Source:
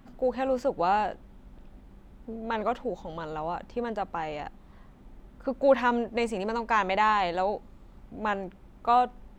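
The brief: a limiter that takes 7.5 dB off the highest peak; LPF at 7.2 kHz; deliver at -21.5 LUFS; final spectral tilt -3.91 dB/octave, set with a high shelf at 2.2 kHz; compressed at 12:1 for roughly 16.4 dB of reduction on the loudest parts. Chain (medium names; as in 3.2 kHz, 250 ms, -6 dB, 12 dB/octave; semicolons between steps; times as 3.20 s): low-pass 7.2 kHz; treble shelf 2.2 kHz +4.5 dB; compression 12:1, threshold -32 dBFS; trim +18.5 dB; peak limiter -10.5 dBFS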